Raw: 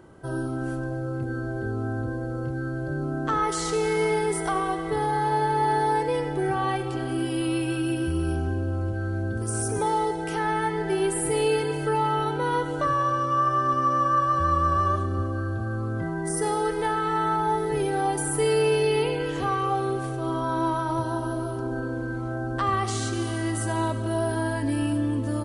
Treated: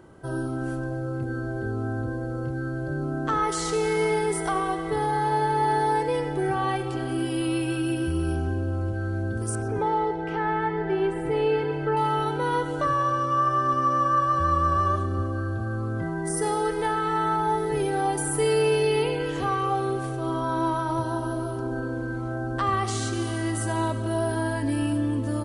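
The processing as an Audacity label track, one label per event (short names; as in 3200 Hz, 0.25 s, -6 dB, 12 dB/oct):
9.550000	11.970000	LPF 2400 Hz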